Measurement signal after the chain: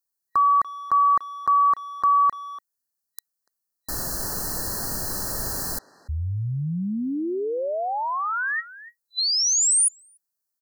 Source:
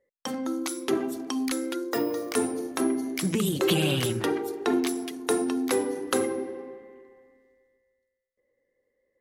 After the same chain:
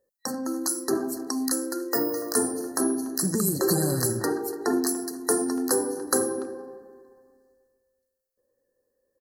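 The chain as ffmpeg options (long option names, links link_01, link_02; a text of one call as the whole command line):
ffmpeg -i in.wav -filter_complex "[0:a]crystalizer=i=1.5:c=0,afftfilt=real='re*(1-between(b*sr/4096,1900,4000))':imag='im*(1-between(b*sr/4096,1900,4000))':win_size=4096:overlap=0.75,asplit=2[link_01][link_02];[link_02]adelay=290,highpass=300,lowpass=3400,asoftclip=type=hard:threshold=-16.5dB,volume=-17dB[link_03];[link_01][link_03]amix=inputs=2:normalize=0" out.wav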